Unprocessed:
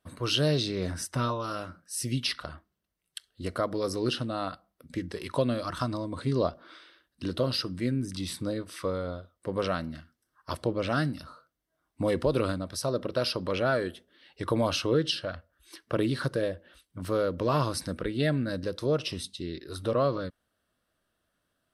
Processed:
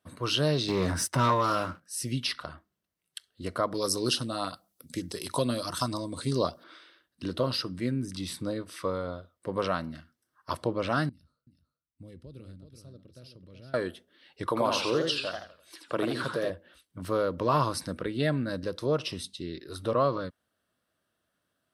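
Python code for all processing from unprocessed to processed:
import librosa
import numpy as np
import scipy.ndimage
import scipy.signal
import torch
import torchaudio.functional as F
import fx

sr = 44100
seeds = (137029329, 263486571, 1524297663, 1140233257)

y = fx.chain(x, sr, fx.highpass(hz=61.0, slope=24),
    fx.leveller(passes=2), at=(0.68, 1.81))
y = fx.chain(y, sr, fx.highpass(hz=54.0, slope=12),
    fx.bass_treble(bass_db=0, treble_db=14),
    fx.filter_lfo_notch(shape='saw_up', hz=8.5, low_hz=600.0, high_hz=2600.0, q=1.8), at=(3.74, 6.64))
y = fx.chain(y, sr, fx.tone_stack(knobs='10-0-1'),
    fx.echo_single(ms=377, db=-8.0), at=(11.09, 13.74))
y = fx.chain(y, sr, fx.highpass(hz=300.0, slope=6),
    fx.echo_warbled(ms=84, feedback_pct=37, rate_hz=2.8, cents=205, wet_db=-4.5), at=(14.46, 16.5))
y = fx.dynamic_eq(y, sr, hz=1000.0, q=2.1, threshold_db=-45.0, ratio=4.0, max_db=6)
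y = scipy.signal.sosfilt(scipy.signal.butter(2, 80.0, 'highpass', fs=sr, output='sos'), y)
y = y * 10.0 ** (-1.0 / 20.0)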